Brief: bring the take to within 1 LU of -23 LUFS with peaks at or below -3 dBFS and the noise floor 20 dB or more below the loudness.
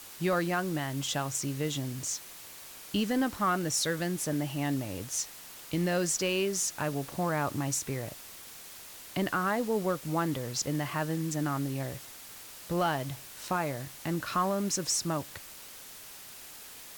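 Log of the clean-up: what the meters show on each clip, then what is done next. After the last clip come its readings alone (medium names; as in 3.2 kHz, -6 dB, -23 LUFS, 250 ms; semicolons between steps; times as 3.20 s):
noise floor -48 dBFS; noise floor target -52 dBFS; loudness -31.5 LUFS; peak level -19.0 dBFS; loudness target -23.0 LUFS
-> noise reduction 6 dB, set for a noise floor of -48 dBFS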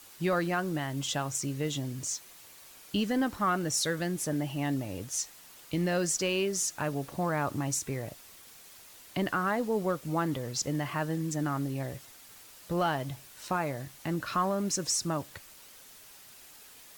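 noise floor -53 dBFS; loudness -31.5 LUFS; peak level -19.5 dBFS; loudness target -23.0 LUFS
-> trim +8.5 dB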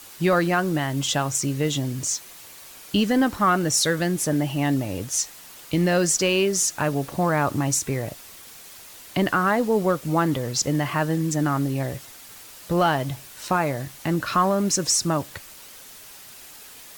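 loudness -23.0 LUFS; peak level -11.0 dBFS; noise floor -44 dBFS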